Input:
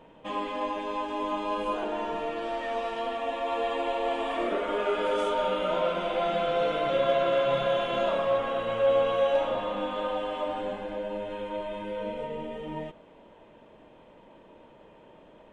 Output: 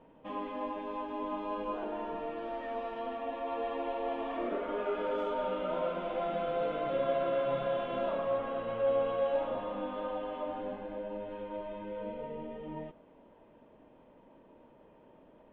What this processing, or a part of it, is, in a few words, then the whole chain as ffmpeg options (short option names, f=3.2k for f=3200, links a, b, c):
phone in a pocket: -af "lowpass=3.9k,equalizer=f=260:t=o:w=0.24:g=5.5,highshelf=f=2.2k:g=-9,volume=-5.5dB"